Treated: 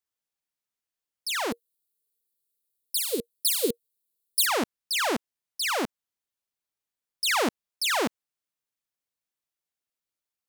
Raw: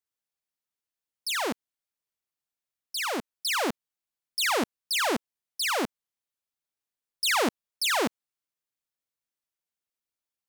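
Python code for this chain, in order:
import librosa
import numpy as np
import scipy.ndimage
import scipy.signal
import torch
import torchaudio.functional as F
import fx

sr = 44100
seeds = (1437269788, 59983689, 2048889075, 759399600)

y = fx.curve_eq(x, sr, hz=(320.0, 470.0, 680.0, 1700.0, 4100.0, 5800.0, 9000.0, 13000.0), db=(0, 10, -23, -19, 5, -2, 10, 13), at=(1.51, 4.45), fade=0.02)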